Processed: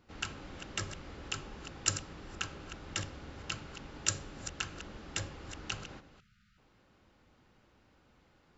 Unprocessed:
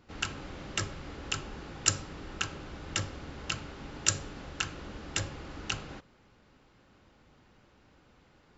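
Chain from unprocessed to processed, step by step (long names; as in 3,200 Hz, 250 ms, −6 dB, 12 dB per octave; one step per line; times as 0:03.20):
delay that plays each chunk backwards 214 ms, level −11.5 dB
time-frequency box erased 0:06.19–0:06.58, 220–1,200 Hz
hum removal 142.6 Hz, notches 3
level −4.5 dB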